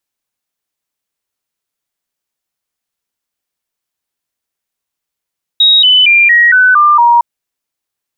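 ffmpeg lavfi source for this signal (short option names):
-f lavfi -i "aevalsrc='0.668*clip(min(mod(t,0.23),0.23-mod(t,0.23))/0.005,0,1)*sin(2*PI*3790*pow(2,-floor(t/0.23)/3)*mod(t,0.23))':d=1.61:s=44100"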